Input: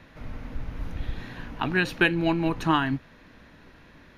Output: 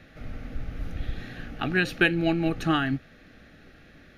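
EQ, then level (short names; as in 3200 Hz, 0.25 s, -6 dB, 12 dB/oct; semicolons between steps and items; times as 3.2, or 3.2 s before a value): Butterworth band-stop 980 Hz, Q 3.2; 0.0 dB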